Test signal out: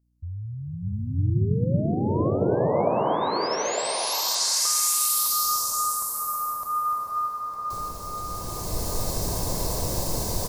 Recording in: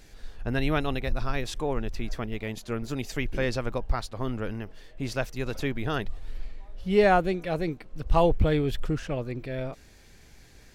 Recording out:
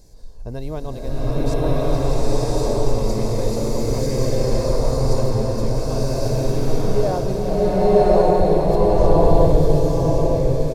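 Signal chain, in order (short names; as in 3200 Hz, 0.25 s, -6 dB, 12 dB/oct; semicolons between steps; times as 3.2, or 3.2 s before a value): band shelf 2100 Hz -16 dB; comb 1.9 ms, depth 35%; in parallel at -0.5 dB: compressor, threshold -32 dBFS; on the sum: hum 60 Hz, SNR 32 dB; on a send: echo 0.905 s -6 dB; on the sum: bloom reverb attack 1.14 s, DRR -11 dB; gain -4.5 dB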